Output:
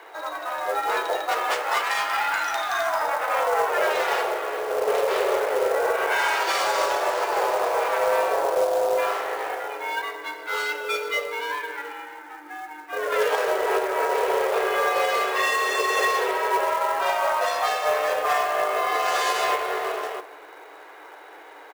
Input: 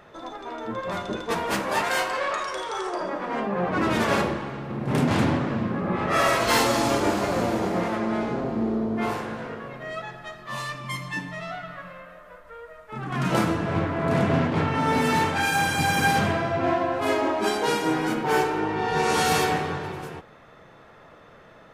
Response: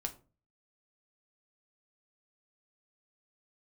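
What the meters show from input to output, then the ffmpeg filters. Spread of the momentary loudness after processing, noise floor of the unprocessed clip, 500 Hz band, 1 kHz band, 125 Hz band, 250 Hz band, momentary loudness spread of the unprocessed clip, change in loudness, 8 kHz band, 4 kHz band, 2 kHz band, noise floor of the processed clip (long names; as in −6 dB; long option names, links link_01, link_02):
9 LU, −50 dBFS, +3.5 dB, +3.0 dB, below −25 dB, −16.0 dB, 14 LU, +1.0 dB, −0.5 dB, +0.5 dB, +2.5 dB, −44 dBFS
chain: -filter_complex "[0:a]afreqshift=290,adynamicsmooth=sensitivity=3:basefreq=7000,asplit=2[link_01][link_02];[link_02]adelay=338,lowpass=frequency=1500:poles=1,volume=-22dB,asplit=2[link_03][link_04];[link_04]adelay=338,lowpass=frequency=1500:poles=1,volume=0.43,asplit=2[link_05][link_06];[link_06]adelay=338,lowpass=frequency=1500:poles=1,volume=0.43[link_07];[link_01][link_03][link_05][link_07]amix=inputs=4:normalize=0,acrusher=bits=4:mode=log:mix=0:aa=0.000001,alimiter=limit=-18.5dB:level=0:latency=1:release=356,volume=5.5dB"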